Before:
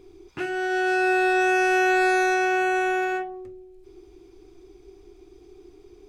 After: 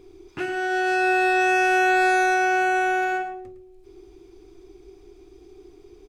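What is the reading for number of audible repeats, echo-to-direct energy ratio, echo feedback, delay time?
2, −11.5 dB, 16%, 109 ms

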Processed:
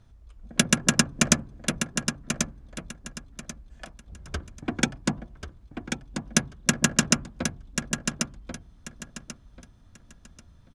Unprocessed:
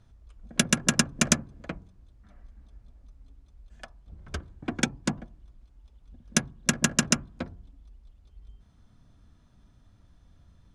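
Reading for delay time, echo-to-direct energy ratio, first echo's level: 1,088 ms, −6.5 dB, −7.0 dB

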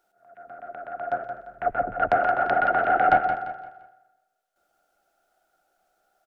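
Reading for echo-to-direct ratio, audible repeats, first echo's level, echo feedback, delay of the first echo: −8.0 dB, 3, −8.5 dB, 35%, 173 ms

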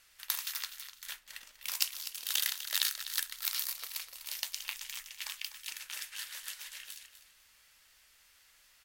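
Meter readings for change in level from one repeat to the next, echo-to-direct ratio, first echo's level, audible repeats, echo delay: −13.5 dB, −12.0 dB, −12.0 dB, 2, 249 ms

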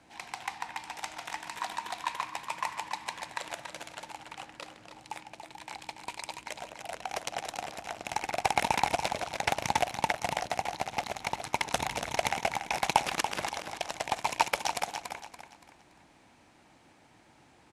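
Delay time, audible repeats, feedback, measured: 285 ms, 3, 35%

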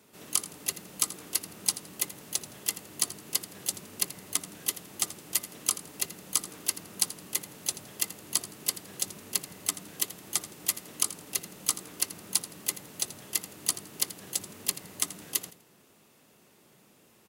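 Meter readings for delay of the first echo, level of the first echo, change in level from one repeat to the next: 83 ms, −15.0 dB, −11.5 dB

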